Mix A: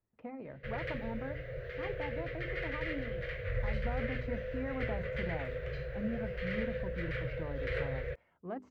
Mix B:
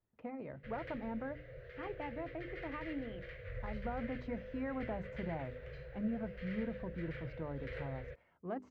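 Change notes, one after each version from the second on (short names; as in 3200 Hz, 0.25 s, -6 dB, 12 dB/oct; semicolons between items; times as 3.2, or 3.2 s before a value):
background -9.5 dB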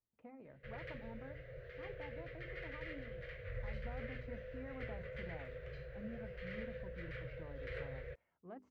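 speech -11.0 dB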